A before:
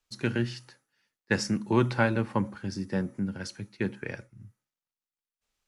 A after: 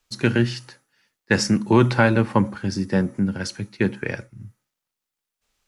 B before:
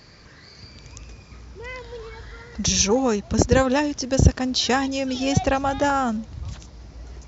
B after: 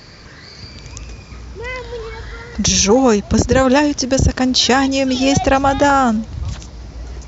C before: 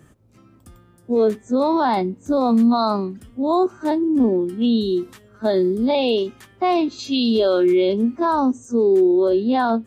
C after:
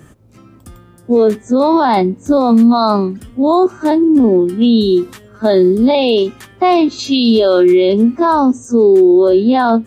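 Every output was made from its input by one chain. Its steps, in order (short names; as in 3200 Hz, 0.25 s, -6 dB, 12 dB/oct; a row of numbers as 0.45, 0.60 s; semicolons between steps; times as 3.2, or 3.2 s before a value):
limiter -12.5 dBFS; gain +9 dB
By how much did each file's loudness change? +8.5, +7.0, +7.5 LU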